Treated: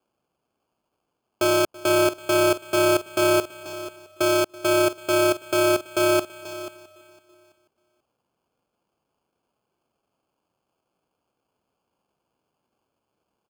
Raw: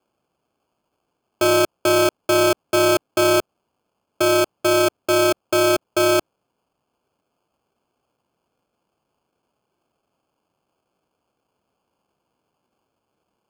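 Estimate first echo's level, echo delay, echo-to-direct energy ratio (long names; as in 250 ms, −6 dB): −21.0 dB, 331 ms, −13.0 dB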